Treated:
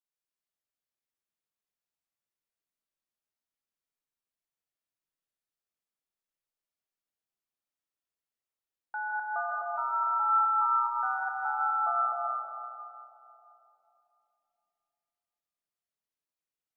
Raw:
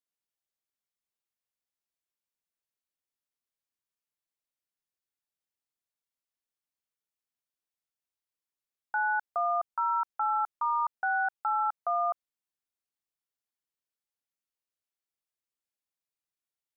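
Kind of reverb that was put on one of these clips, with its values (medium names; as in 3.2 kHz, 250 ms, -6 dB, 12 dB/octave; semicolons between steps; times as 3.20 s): algorithmic reverb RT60 3.1 s, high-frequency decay 0.35×, pre-delay 115 ms, DRR -4 dB; trim -6.5 dB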